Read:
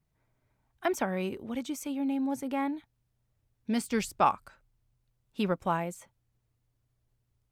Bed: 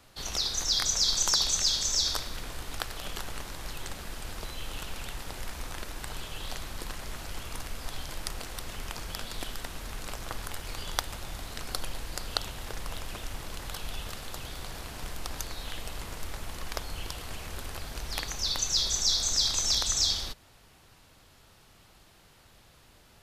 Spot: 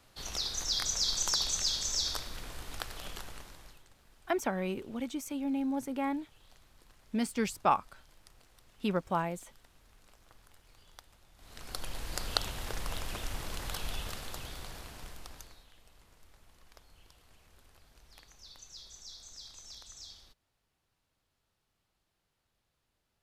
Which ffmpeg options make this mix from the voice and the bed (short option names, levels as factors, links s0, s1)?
-filter_complex "[0:a]adelay=3450,volume=0.794[s0];[1:a]volume=8.41,afade=t=out:st=3.03:d=0.81:silence=0.11885,afade=t=in:st=11.36:d=0.85:silence=0.0668344,afade=t=out:st=13.82:d=1.85:silence=0.0707946[s1];[s0][s1]amix=inputs=2:normalize=0"